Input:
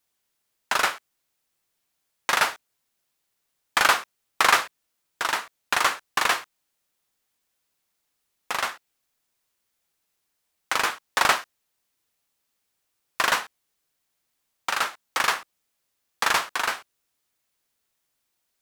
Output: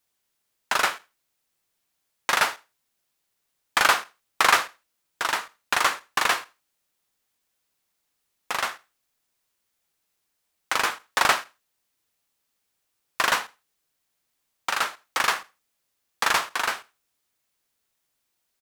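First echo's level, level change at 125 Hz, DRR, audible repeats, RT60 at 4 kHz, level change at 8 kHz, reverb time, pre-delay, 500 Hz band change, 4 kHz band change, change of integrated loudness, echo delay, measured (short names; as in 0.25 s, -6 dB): -23.5 dB, 0.0 dB, none, 1, none, 0.0 dB, none, none, 0.0 dB, 0.0 dB, 0.0 dB, 81 ms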